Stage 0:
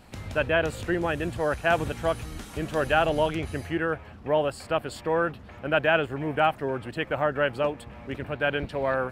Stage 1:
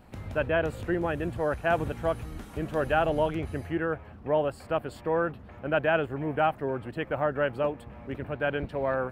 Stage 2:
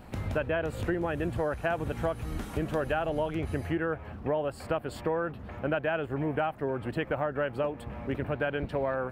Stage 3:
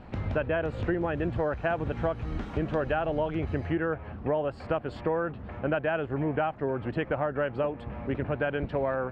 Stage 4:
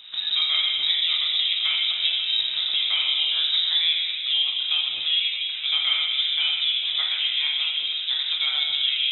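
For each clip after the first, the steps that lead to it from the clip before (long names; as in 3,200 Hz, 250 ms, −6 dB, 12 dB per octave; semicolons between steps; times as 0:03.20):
parametric band 5,900 Hz −10 dB 2.7 octaves; level −1 dB
downward compressor, threshold −32 dBFS, peak gain reduction 12 dB; level +5.5 dB
high-frequency loss of the air 180 metres; level +2 dB
dense smooth reverb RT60 2.6 s, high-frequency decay 0.35×, DRR −3 dB; voice inversion scrambler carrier 3,800 Hz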